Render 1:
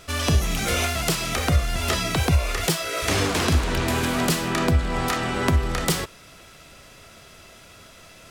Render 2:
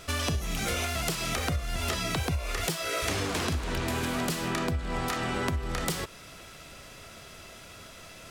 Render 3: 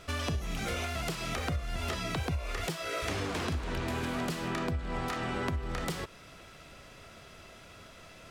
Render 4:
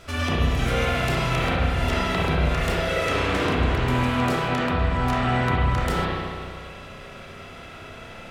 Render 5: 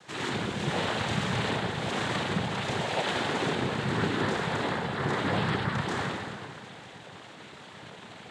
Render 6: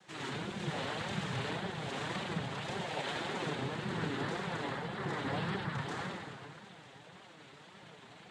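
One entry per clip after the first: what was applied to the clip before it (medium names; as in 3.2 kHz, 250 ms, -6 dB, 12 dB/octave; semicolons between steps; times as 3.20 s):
compression, threshold -27 dBFS, peak gain reduction 12.5 dB
treble shelf 5.2 kHz -9 dB; trim -3 dB
spring tank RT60 2 s, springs 32/47 ms, chirp 40 ms, DRR -8 dB; trim +3 dB
noise-vocoded speech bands 6; trim -5 dB
flange 1.8 Hz, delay 5 ms, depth 2.6 ms, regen +37%; trim -4.5 dB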